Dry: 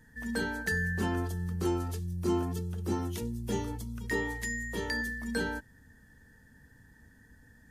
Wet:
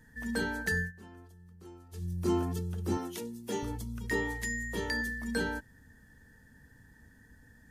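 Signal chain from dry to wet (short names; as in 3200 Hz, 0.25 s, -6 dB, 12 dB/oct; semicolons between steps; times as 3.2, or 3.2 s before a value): 0.79–2.04 dip -20.5 dB, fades 0.13 s; 2.97–3.63 HPF 260 Hz 12 dB/oct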